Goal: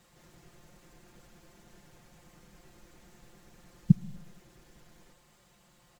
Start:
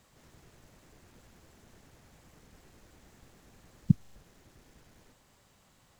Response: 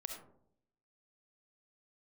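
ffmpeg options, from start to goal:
-filter_complex "[0:a]aecho=1:1:5.7:0.76,asplit=2[a][b];[1:a]atrim=start_sample=2205[c];[b][c]afir=irnorm=-1:irlink=0,volume=-12.5dB[d];[a][d]amix=inputs=2:normalize=0,volume=-2dB"

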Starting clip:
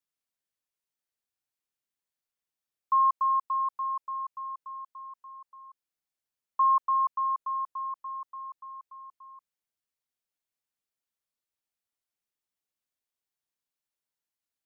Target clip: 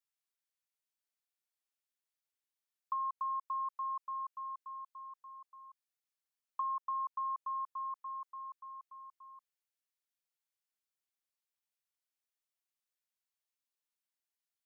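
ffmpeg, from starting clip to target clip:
-af "highpass=f=920:p=1,acompressor=threshold=-31dB:ratio=10,volume=-3dB"

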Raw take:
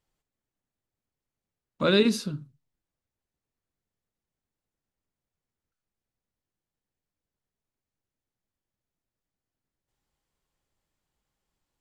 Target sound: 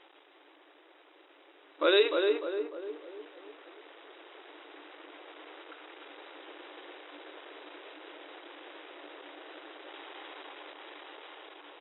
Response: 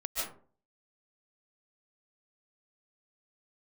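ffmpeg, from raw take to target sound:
-filter_complex "[0:a]aeval=exprs='val(0)+0.5*0.0168*sgn(val(0))':c=same,agate=range=-8dB:threshold=-32dB:ratio=16:detection=peak,asplit=2[a][b];[b]adelay=299,lowpass=f=1.4k:p=1,volume=-4dB,asplit=2[c][d];[d]adelay=299,lowpass=f=1.4k:p=1,volume=0.45,asplit=2[e][f];[f]adelay=299,lowpass=f=1.4k:p=1,volume=0.45,asplit=2[g][h];[h]adelay=299,lowpass=f=1.4k:p=1,volume=0.45,asplit=2[i][j];[j]adelay=299,lowpass=f=1.4k:p=1,volume=0.45,asplit=2[k][l];[l]adelay=299,lowpass=f=1.4k:p=1,volume=0.45[m];[a][c][e][g][i][k][m]amix=inputs=7:normalize=0,dynaudnorm=f=490:g=11:m=12dB,afftfilt=real='re*between(b*sr/4096,280,3900)':imag='im*between(b*sr/4096,280,3900)':win_size=4096:overlap=0.75,volume=-3.5dB"

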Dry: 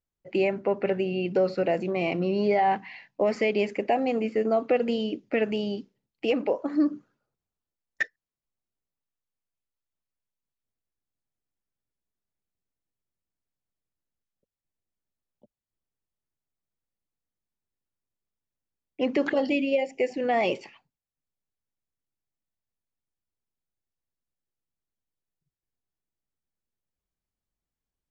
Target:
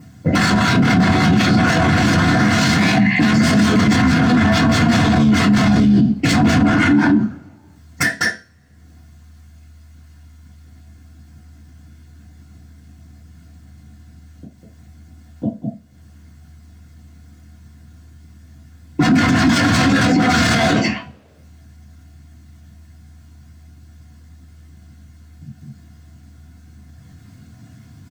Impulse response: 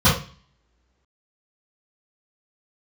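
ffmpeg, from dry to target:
-filter_complex "[0:a]aecho=1:1:201:0.631,aeval=exprs='0.316*sin(PI/2*10*val(0)/0.316)':c=same,tremolo=f=77:d=1,volume=17dB,asoftclip=hard,volume=-17dB,asettb=1/sr,asplit=3[a][b][c];[a]atrim=end=2.584[d];[b]atrim=start=2.58:end=4.38,asetpts=PTS-STARTPTS,afade=t=in:d=0.004:c=qsin,afade=t=out:st=1.796:d=0.004:c=qsin,equalizer=f=210:t=o:w=1.4:g=4[e];[c]atrim=start=4.376[f];[d][e]acrossfade=d=0.004:c1=hsin:c2=qsin[g];[g][f]acrossfade=d=0.004:c1=qsin:c2=hsin,acompressor=mode=upward:threshold=-48dB:ratio=2.5,asettb=1/sr,asplit=3[h][i][j];[h]atrim=end=5.744[k];[i]atrim=start=5.74:end=6.32,asetpts=PTS-STARTPTS,afade=t=in:d=0.004:c=qsin,afade=t=out:st=0.576:d=0.004:c=qsin,equalizer=f=950:t=o:w=0.92:g=-12.5[l];[j]atrim=start=6.316[m];[k][l]acrossfade=d=0.004:c1=hsin:c2=qsin[n];[n][m]acrossfade=d=0.004:c1=qsin:c2=hsin[o];[1:a]atrim=start_sample=2205,asetrate=61740,aresample=44100[p];[o][p]afir=irnorm=-1:irlink=0,alimiter=level_in=-2dB:limit=-1dB:release=50:level=0:latency=1,volume=-5.5dB"

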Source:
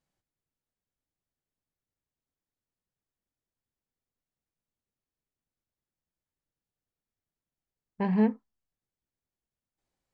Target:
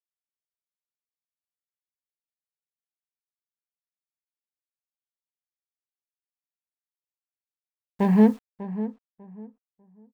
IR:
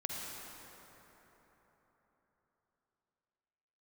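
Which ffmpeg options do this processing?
-filter_complex "[0:a]highshelf=f=2k:g=-3.5,acrossover=split=300|840[a][b][c];[c]asoftclip=type=tanh:threshold=-37.5dB[d];[a][b][d]amix=inputs=3:normalize=0,acrusher=bits=9:mix=0:aa=0.000001,asplit=2[e][f];[f]adelay=596,lowpass=f=1.4k:p=1,volume=-13dB,asplit=2[g][h];[h]adelay=596,lowpass=f=1.4k:p=1,volume=0.24,asplit=2[i][j];[j]adelay=596,lowpass=f=1.4k:p=1,volume=0.24[k];[e][g][i][k]amix=inputs=4:normalize=0,volume=7.5dB"

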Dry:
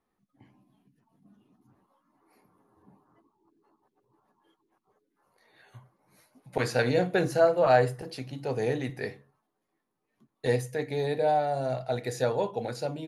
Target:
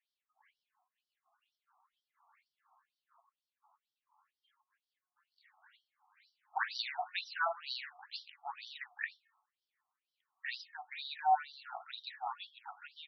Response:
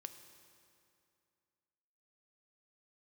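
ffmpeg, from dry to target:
-af "highshelf=f=4.7k:g=5.5,bandreject=f=362.4:t=h:w=4,bandreject=f=724.8:t=h:w=4,bandreject=f=1.0872k:t=h:w=4,bandreject=f=1.4496k:t=h:w=4,bandreject=f=1.812k:t=h:w=4,bandreject=f=2.1744k:t=h:w=4,bandreject=f=2.5368k:t=h:w=4,bandreject=f=2.8992k:t=h:w=4,bandreject=f=3.2616k:t=h:w=4,bandreject=f=3.624k:t=h:w=4,bandreject=f=3.9864k:t=h:w=4,bandreject=f=4.3488k:t=h:w=4,bandreject=f=4.7112k:t=h:w=4,bandreject=f=5.0736k:t=h:w=4,bandreject=f=5.436k:t=h:w=4,afftfilt=real='re*between(b*sr/1024,930*pow(4200/930,0.5+0.5*sin(2*PI*2.1*pts/sr))/1.41,930*pow(4200/930,0.5+0.5*sin(2*PI*2.1*pts/sr))*1.41)':imag='im*between(b*sr/1024,930*pow(4200/930,0.5+0.5*sin(2*PI*2.1*pts/sr))/1.41,930*pow(4200/930,0.5+0.5*sin(2*PI*2.1*pts/sr))*1.41)':win_size=1024:overlap=0.75,volume=1dB"

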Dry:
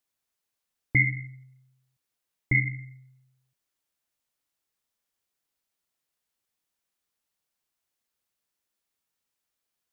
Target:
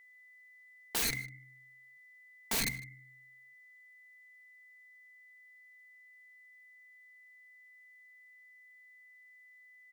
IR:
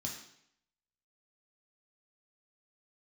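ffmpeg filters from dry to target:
-filter_complex "[0:a]highpass=170,aeval=exprs='(mod(22.4*val(0)+1,2)-1)/22.4':c=same,aecho=1:1:4.4:0.47,aeval=exprs='val(0)+0.00141*sin(2*PI*2000*n/s)':c=same,bandreject=f=60:t=h:w=6,bandreject=f=120:t=h:w=6,bandreject=f=180:t=h:w=6,bandreject=f=240:t=h:w=6,bandreject=f=300:t=h:w=6,asplit=2[a][b];[b]aecho=0:1:153:0.0841[c];[a][c]amix=inputs=2:normalize=0"

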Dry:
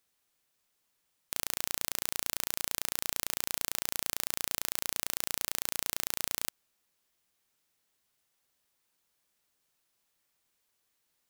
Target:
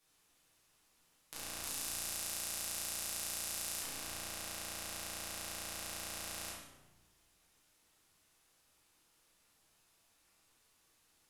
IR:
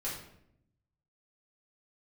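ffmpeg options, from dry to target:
-filter_complex "[0:a]asettb=1/sr,asplit=3[a][b][c];[a]atrim=end=1.634[d];[b]atrim=start=1.63:end=3.82,asetpts=PTS-STARTPTS,afade=t=in:d=0.004:c=qsin,afade=t=out:st=2.186:d=0.004:c=qsin,highshelf=f=5.8k:g=8.5[e];[c]atrim=start=3.816[f];[d][e]acrossfade=d=0.004:c1=hsin:c2=qsin[g];[g][f]acrossfade=d=0.004:c1=qsin:c2=hsin,volume=17.5dB,asoftclip=hard,volume=-17.5dB[h];[1:a]atrim=start_sample=2205,asetrate=26019,aresample=44100[i];[h][i]afir=irnorm=-1:irlink=0,volume=2dB"

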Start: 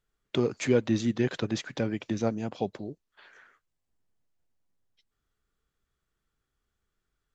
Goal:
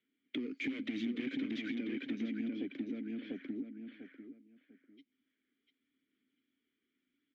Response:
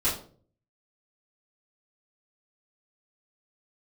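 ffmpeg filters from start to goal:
-filter_complex "[0:a]asettb=1/sr,asplit=3[a][b][c];[a]atrim=end=0.644[d];[b]atrim=start=0.64:end=1.75,asetpts=PTS-STARTPTS,afade=t=in:d=0.004:c=qsin,afade=t=out:st=1.106:d=0.004:c=qsin,aeval=exprs='0.266*sin(PI/2*3.55*val(0)/0.266)':c=same[e];[c]atrim=start=1.746[f];[d][e]acrossfade=d=0.004:c1=hsin:c2=qsin[g];[g][f]acrossfade=d=0.004:c1=qsin:c2=hsin,asplit=2[h][i];[i]highpass=f=720:p=1,volume=19dB,asoftclip=type=tanh:threshold=-11.5dB[j];[h][j]amix=inputs=2:normalize=0,lowpass=f=2.3k:p=1,volume=-6dB,asplit=3[k][l][m];[k]bandpass=f=270:t=q:w=8,volume=0dB[n];[l]bandpass=f=2.29k:t=q:w=8,volume=-6dB[o];[m]bandpass=f=3.01k:t=q:w=8,volume=-9dB[p];[n][o][p]amix=inputs=3:normalize=0,equalizer=f=250:t=o:w=0.94:g=8.5,acrossover=split=160|810|3200[q][r][s][t];[q]acompressor=threshold=-49dB:ratio=4[u];[r]acompressor=threshold=-30dB:ratio=4[v];[s]acompressor=threshold=-40dB:ratio=4[w];[t]acompressor=threshold=-50dB:ratio=4[x];[u][v][w][x]amix=inputs=4:normalize=0,asplit=2[y][z];[z]adelay=695,lowpass=f=2.8k:p=1,volume=-4dB,asplit=2[aa][ab];[ab]adelay=695,lowpass=f=2.8k:p=1,volume=0.23,asplit=2[ac][ad];[ad]adelay=695,lowpass=f=2.8k:p=1,volume=0.23[ae];[y][aa][ac][ae]amix=inputs=4:normalize=0,aphaser=in_gain=1:out_gain=1:delay=2.5:decay=0.22:speed=0.81:type=sinusoidal,acompressor=threshold=-41dB:ratio=3,volume=3dB"

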